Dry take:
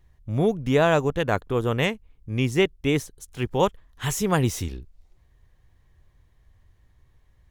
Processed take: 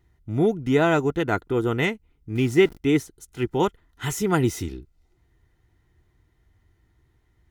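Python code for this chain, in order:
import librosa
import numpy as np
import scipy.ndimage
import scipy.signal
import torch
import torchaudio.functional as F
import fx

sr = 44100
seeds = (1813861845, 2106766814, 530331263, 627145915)

y = fx.zero_step(x, sr, step_db=-34.5, at=(2.35, 2.77))
y = fx.notch_comb(y, sr, f0_hz=560.0)
y = fx.small_body(y, sr, hz=(330.0, 1400.0, 2000.0), ring_ms=30, db=8)
y = y * librosa.db_to_amplitude(-1.0)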